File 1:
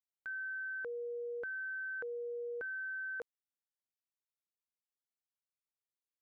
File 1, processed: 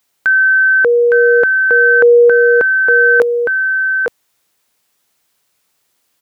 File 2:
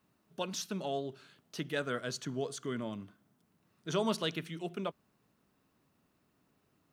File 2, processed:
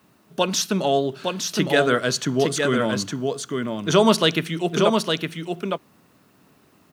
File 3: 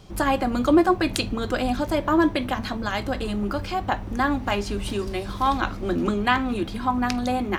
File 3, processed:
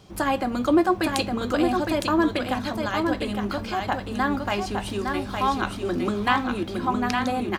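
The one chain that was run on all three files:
HPF 97 Hz 6 dB/oct; on a send: echo 0.861 s -4.5 dB; on the sum: normalise peaks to -3 dBFS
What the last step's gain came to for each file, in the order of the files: +30.5, +16.0, -1.5 dB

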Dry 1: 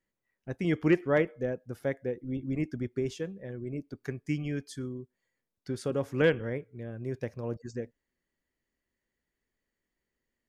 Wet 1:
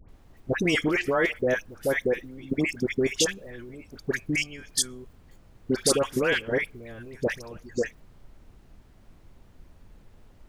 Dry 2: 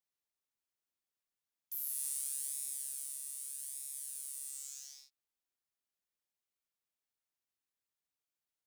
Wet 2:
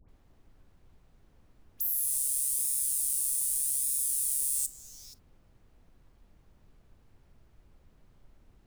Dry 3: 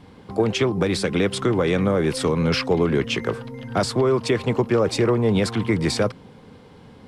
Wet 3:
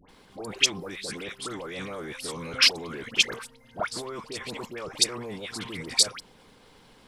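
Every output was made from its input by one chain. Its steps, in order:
tilt +3 dB/oct; harmonic-percussive split harmonic -6 dB; level quantiser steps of 20 dB; added noise brown -68 dBFS; dispersion highs, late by 90 ms, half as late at 1300 Hz; match loudness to -27 LUFS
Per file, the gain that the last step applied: +18.0, +10.0, +4.0 dB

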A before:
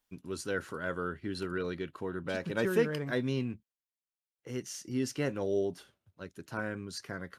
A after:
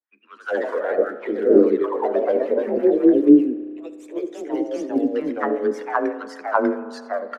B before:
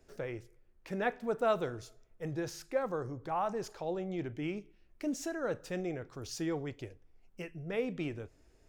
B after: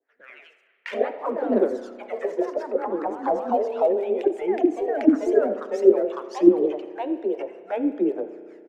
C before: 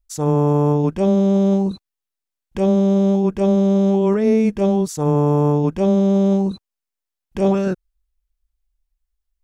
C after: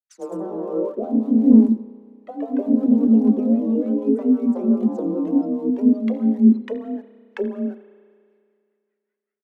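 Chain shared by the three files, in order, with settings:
steep high-pass 190 Hz 48 dB/oct; frequency shift +28 Hz; AGC gain up to 16 dB; limiter -10.5 dBFS; auto-wah 240–1900 Hz, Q 3.2, down, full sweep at -14.5 dBFS; phaser 0.61 Hz, delay 2.3 ms, feedback 61%; harmonic tremolo 5.1 Hz, depth 100%, crossover 570 Hz; low-pass opened by the level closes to 1300 Hz, open at -56 dBFS; echo 86 ms -17.5 dB; spring tank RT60 2.2 s, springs 33 ms, chirp 35 ms, DRR 12.5 dB; echoes that change speed 0.117 s, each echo +2 st, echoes 2; normalise peaks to -2 dBFS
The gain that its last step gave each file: +8.5, +7.0, +4.0 dB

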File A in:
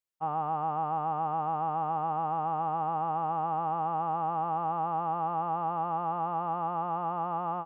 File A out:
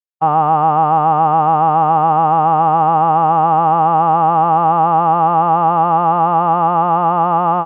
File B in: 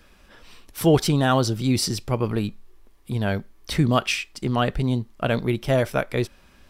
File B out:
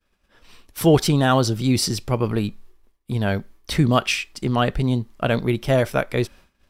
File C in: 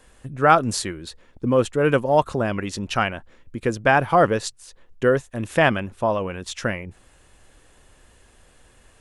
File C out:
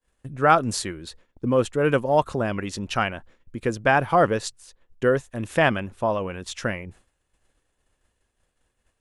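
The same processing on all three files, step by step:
expander -41 dBFS; normalise peaks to -3 dBFS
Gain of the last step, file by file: +18.5, +2.0, -2.0 dB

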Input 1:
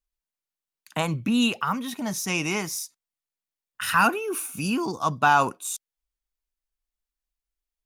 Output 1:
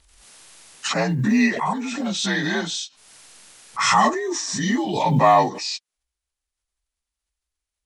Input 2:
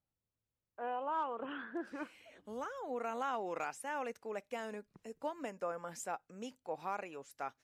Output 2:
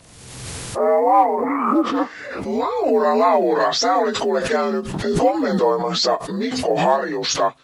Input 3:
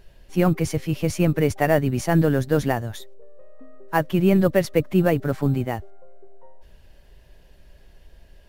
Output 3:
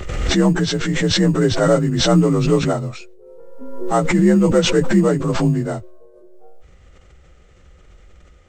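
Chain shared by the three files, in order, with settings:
inharmonic rescaling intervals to 85%; short-mantissa float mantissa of 6-bit; backwards sustainer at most 40 dB/s; normalise peaks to -3 dBFS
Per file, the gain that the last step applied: +5.0, +23.5, +4.5 dB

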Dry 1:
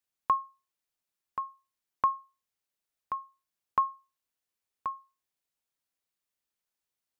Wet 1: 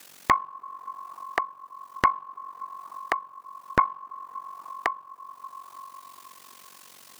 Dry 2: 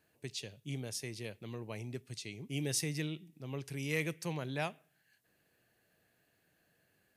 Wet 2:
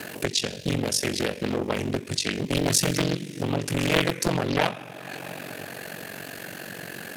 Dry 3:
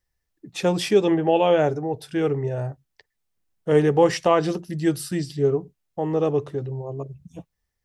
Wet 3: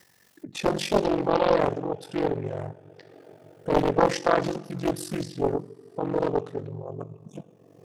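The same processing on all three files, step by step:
two-slope reverb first 0.66 s, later 3.2 s, from -18 dB, DRR 12 dB; upward compressor, threshold -29 dBFS; HPF 140 Hz 24 dB/oct; ring modulator 23 Hz; Doppler distortion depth 0.87 ms; normalise peaks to -6 dBFS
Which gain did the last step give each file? +9.0, +15.5, -0.5 dB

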